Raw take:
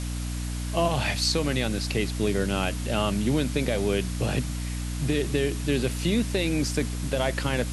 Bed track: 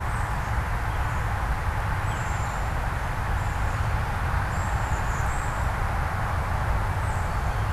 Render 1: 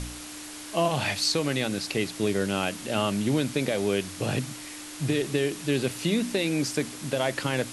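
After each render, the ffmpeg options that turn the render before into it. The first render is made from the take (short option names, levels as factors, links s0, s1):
-af "bandreject=f=60:t=h:w=4,bandreject=f=120:t=h:w=4,bandreject=f=180:t=h:w=4,bandreject=f=240:t=h:w=4"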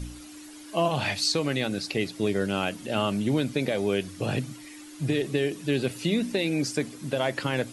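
-af "afftdn=nr=11:nf=-41"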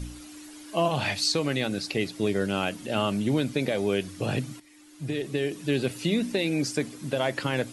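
-filter_complex "[0:a]asplit=2[s0][s1];[s0]atrim=end=4.6,asetpts=PTS-STARTPTS,afade=t=out:st=4.596:d=0.004:c=hsin:silence=0.211349[s2];[s1]atrim=start=4.6,asetpts=PTS-STARTPTS,afade=t=in:d=1.09:silence=0.211349[s3];[s2][s3]concat=n=2:v=0:a=1"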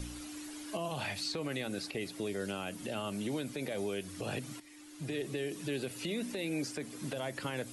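-filter_complex "[0:a]acrossover=split=300|3600|7500[s0][s1][s2][s3];[s0]acompressor=threshold=0.00794:ratio=4[s4];[s1]acompressor=threshold=0.0178:ratio=4[s5];[s2]acompressor=threshold=0.00224:ratio=4[s6];[s3]acompressor=threshold=0.00355:ratio=4[s7];[s4][s5][s6][s7]amix=inputs=4:normalize=0,alimiter=level_in=1.41:limit=0.0631:level=0:latency=1:release=64,volume=0.708"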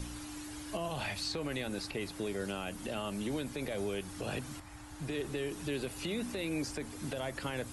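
-filter_complex "[1:a]volume=0.0501[s0];[0:a][s0]amix=inputs=2:normalize=0"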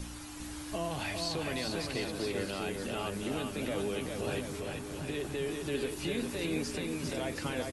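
-filter_complex "[0:a]asplit=2[s0][s1];[s1]adelay=12,volume=0.299[s2];[s0][s2]amix=inputs=2:normalize=0,aecho=1:1:400|720|976|1181|1345:0.631|0.398|0.251|0.158|0.1"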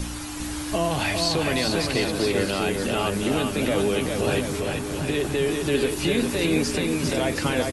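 -af "volume=3.76"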